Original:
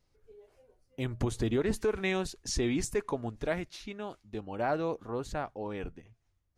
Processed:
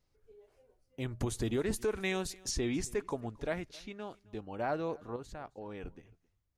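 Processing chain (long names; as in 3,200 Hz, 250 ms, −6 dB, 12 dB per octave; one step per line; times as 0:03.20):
0:01.20–0:02.51: high-shelf EQ 6,600 Hz +10.5 dB
0:05.16–0:05.85: output level in coarse steps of 10 dB
on a send: single-tap delay 267 ms −24 dB
on the sum: level −3.5 dB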